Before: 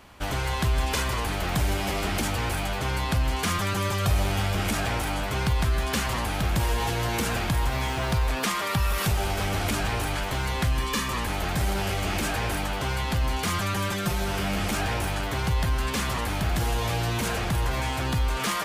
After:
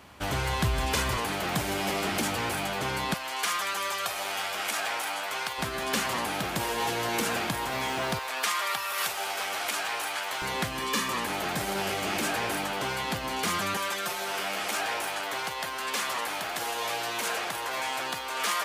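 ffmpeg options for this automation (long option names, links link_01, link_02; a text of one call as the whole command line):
ffmpeg -i in.wav -af "asetnsamples=nb_out_samples=441:pad=0,asendcmd='1.17 highpass f 170;3.14 highpass f 700;5.58 highpass f 230;8.19 highpass f 720;10.42 highpass f 220;13.77 highpass f 530',highpass=72" out.wav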